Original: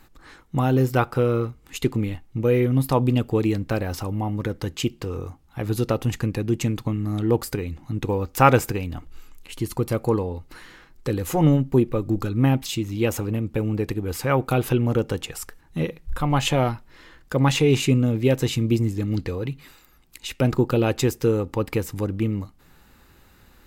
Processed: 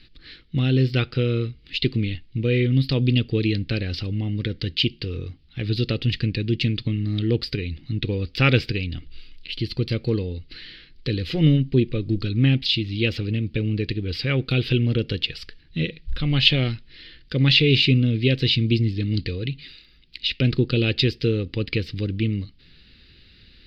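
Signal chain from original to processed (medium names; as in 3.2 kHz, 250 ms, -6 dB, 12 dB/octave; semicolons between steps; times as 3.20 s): FFT filter 130 Hz 0 dB, 450 Hz -5 dB, 920 Hz -24 dB, 1.8 kHz -1 dB, 3.1 kHz +9 dB, 4.7 kHz +10 dB, 6.7 kHz -25 dB, 14 kHz -30 dB; trim +2 dB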